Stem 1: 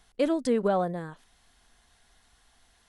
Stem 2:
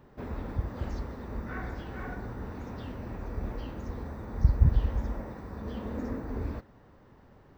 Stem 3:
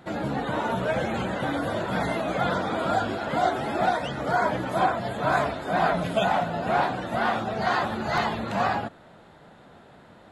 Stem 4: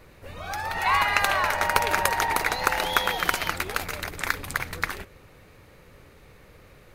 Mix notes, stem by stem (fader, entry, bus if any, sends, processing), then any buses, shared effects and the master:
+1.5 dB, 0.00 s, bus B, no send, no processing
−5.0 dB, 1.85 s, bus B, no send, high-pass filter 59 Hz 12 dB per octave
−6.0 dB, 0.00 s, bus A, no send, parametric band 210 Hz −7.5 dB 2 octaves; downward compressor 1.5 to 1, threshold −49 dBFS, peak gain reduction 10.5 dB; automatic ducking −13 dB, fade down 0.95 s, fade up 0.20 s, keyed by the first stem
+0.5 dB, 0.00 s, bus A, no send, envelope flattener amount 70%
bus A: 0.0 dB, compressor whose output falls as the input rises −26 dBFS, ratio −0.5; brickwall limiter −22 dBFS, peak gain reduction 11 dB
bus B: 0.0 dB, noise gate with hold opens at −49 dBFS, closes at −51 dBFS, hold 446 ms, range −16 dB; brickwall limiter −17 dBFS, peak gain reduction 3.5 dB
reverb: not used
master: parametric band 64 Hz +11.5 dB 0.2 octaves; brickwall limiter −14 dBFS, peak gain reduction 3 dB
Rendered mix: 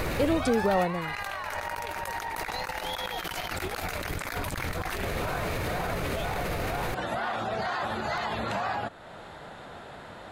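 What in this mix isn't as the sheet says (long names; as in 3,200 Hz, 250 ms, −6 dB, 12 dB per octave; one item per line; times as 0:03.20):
stem 2: muted
stem 3 −6.0 dB → +5.5 dB
master: missing parametric band 64 Hz +11.5 dB 0.2 octaves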